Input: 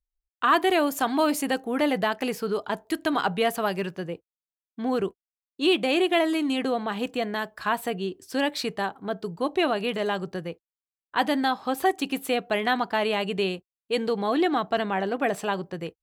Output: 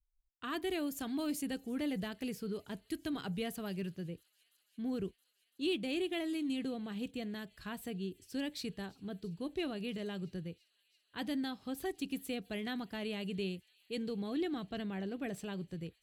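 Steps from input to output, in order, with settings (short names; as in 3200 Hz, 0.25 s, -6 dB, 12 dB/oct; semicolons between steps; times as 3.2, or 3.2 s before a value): passive tone stack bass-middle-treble 10-0-1; on a send: thin delay 0.336 s, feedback 84%, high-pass 3200 Hz, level -23 dB; on the sum: gain +9.5 dB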